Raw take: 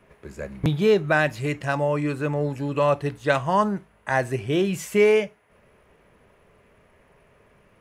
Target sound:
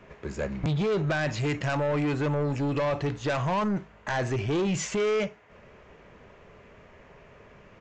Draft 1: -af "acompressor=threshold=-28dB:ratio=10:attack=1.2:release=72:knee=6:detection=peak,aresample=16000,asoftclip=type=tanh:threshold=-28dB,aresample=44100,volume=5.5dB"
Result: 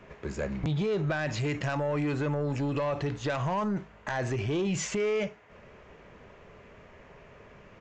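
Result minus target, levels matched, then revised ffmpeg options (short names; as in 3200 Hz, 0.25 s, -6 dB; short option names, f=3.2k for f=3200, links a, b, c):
compressor: peak gain reduction +6 dB
-af "acompressor=threshold=-21.5dB:ratio=10:attack=1.2:release=72:knee=6:detection=peak,aresample=16000,asoftclip=type=tanh:threshold=-28dB,aresample=44100,volume=5.5dB"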